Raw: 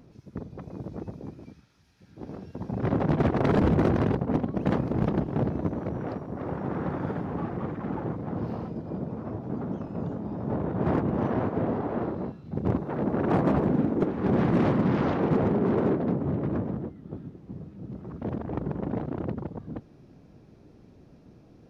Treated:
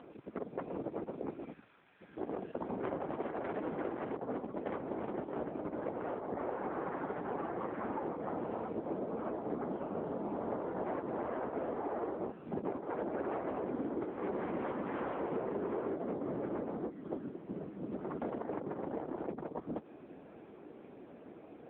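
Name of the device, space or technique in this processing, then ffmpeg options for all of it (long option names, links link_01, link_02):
voicemail: -af "highpass=400,lowpass=2600,acompressor=threshold=-43dB:ratio=10,volume=10dB" -ar 8000 -c:a libopencore_amrnb -b:a 6700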